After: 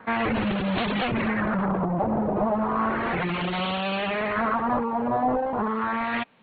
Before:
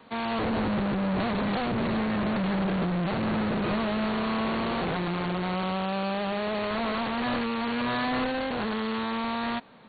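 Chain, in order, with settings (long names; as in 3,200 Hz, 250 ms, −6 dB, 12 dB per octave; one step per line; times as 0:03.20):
reverb reduction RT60 1.1 s
auto-filter low-pass sine 0.22 Hz 760–3,300 Hz
phase-vocoder stretch with locked phases 0.65×
level +5 dB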